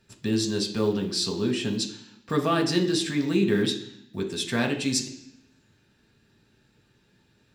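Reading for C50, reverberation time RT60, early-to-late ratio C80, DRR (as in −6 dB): 9.5 dB, 0.65 s, 12.0 dB, 1.0 dB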